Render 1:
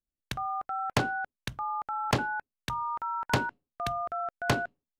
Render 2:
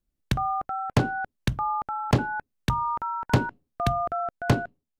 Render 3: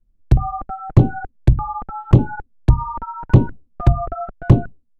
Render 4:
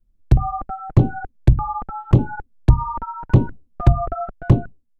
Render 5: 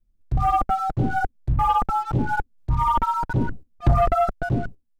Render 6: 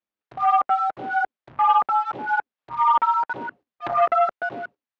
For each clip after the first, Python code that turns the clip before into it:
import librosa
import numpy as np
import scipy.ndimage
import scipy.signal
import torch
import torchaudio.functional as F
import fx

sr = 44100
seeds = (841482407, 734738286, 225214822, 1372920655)

y1 = fx.low_shelf(x, sr, hz=490.0, db=11.5)
y1 = fx.rider(y1, sr, range_db=4, speed_s=0.5)
y2 = fx.tilt_eq(y1, sr, slope=-4.0)
y2 = fx.env_flanger(y2, sr, rest_ms=9.5, full_db=-8.5)
y2 = fx.fold_sine(y2, sr, drive_db=4, ceiling_db=3.0)
y2 = y2 * 10.0 ** (-4.5 / 20.0)
y3 = fx.rider(y2, sr, range_db=4, speed_s=0.5)
y3 = y3 * 10.0 ** (-1.5 / 20.0)
y4 = fx.auto_swell(y3, sr, attack_ms=203.0)
y4 = fx.leveller(y4, sr, passes=2)
y5 = fx.bandpass_edges(y4, sr, low_hz=760.0, high_hz=3000.0)
y5 = y5 * 10.0 ** (4.5 / 20.0)